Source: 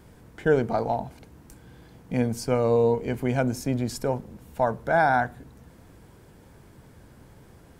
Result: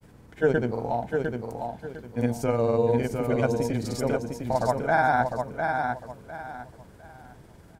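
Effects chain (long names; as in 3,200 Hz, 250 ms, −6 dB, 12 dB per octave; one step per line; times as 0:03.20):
granular cloud, pitch spread up and down by 0 semitones
on a send: repeating echo 704 ms, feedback 27%, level −5 dB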